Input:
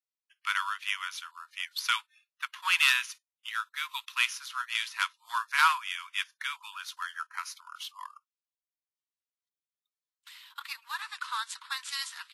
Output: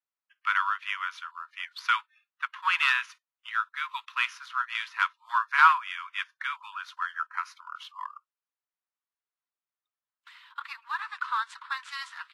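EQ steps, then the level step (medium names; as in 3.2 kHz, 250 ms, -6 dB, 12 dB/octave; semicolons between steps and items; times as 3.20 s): band-pass filter 1.2 kHz, Q 1.3; +6.0 dB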